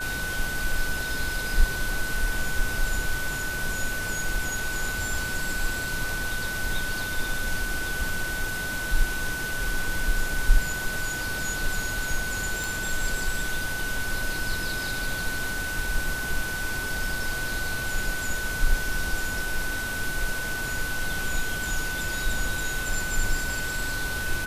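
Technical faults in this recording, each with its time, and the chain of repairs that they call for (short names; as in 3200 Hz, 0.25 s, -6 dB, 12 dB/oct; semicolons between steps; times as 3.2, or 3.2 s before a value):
tone 1500 Hz -30 dBFS
12.64 pop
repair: de-click; notch 1500 Hz, Q 30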